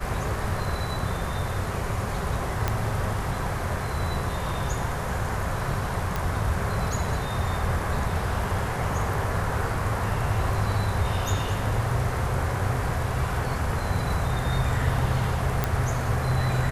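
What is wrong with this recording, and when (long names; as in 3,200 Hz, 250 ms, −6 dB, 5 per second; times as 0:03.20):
0:02.68: click −10 dBFS
0:06.16: click
0:15.64: click −9 dBFS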